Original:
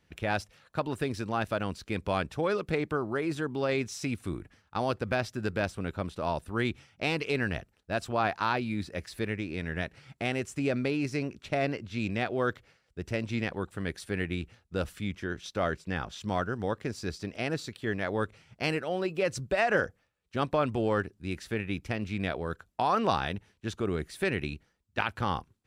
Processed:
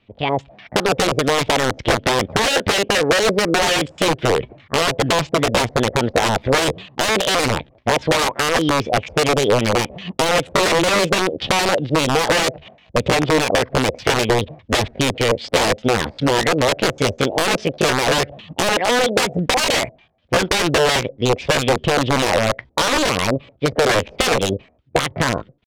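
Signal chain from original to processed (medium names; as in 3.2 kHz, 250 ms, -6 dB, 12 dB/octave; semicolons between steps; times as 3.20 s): level rider gain up to 15 dB; LFO low-pass square 5 Hz 470–2400 Hz; treble shelf 3.2 kHz -7 dB; integer overflow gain 11.5 dB; compression, threshold -21 dBFS, peak gain reduction 7 dB; low-pass 5.6 kHz 12 dB/octave; pitch shift +5 st; dynamic bell 490 Hz, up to +6 dB, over -41 dBFS, Q 1.6; trim +6 dB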